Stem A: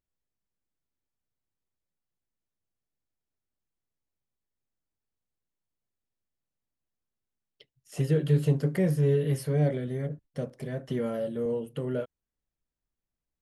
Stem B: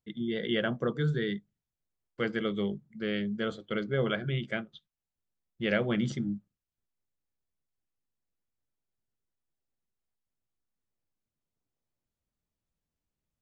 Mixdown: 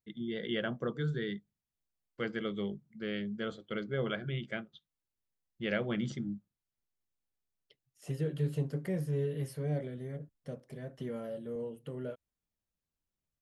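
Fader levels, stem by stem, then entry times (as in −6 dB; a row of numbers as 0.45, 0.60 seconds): −9.0, −5.0 decibels; 0.10, 0.00 seconds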